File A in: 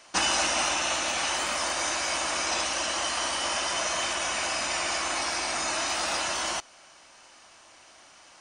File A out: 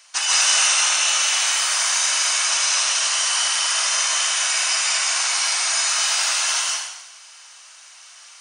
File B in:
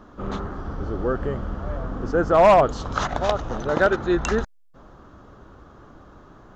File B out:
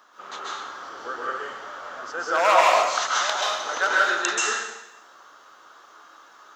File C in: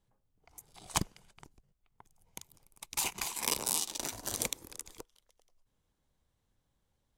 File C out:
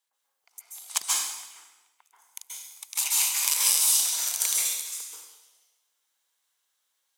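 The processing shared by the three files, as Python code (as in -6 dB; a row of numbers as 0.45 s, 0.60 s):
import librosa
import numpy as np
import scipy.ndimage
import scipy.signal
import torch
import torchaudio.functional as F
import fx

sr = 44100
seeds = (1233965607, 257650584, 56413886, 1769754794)

y = scipy.signal.sosfilt(scipy.signal.butter(2, 1100.0, 'highpass', fs=sr, output='sos'), x)
y = fx.high_shelf(y, sr, hz=3700.0, db=8.5)
y = fx.rev_plate(y, sr, seeds[0], rt60_s=0.93, hf_ratio=1.0, predelay_ms=120, drr_db=-5.0)
y = y * librosa.db_to_amplitude(-1.0)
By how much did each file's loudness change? +9.5 LU, -0.5 LU, +11.0 LU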